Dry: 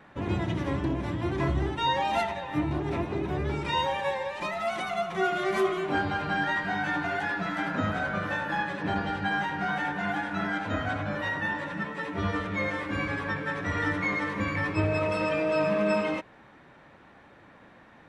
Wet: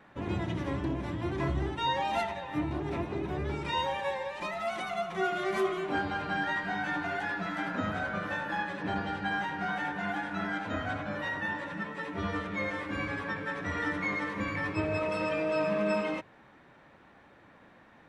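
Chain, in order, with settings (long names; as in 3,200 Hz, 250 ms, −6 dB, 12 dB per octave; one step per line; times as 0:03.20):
mains-hum notches 50/100/150 Hz
level −3.5 dB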